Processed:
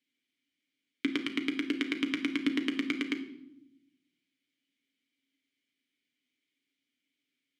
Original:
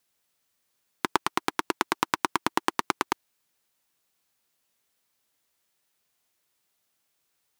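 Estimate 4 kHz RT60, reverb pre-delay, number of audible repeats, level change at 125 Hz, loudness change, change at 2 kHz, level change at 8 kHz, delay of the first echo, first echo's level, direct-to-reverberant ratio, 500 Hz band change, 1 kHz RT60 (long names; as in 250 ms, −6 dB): 0.65 s, 7 ms, no echo audible, −8.0 dB, −3.5 dB, −4.0 dB, −16.0 dB, no echo audible, no echo audible, 4.0 dB, −7.0 dB, 0.70 s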